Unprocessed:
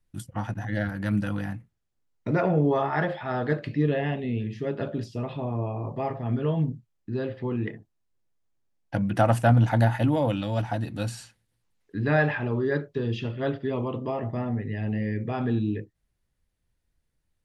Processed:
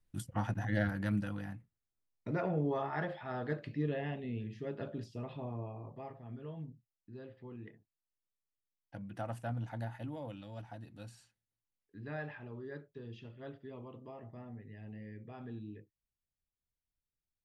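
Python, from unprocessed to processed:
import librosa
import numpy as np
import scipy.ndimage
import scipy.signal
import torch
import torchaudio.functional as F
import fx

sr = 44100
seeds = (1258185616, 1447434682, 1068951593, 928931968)

y = fx.gain(x, sr, db=fx.line((0.9, -4.0), (1.34, -11.0), (5.45, -11.0), (6.27, -19.5)))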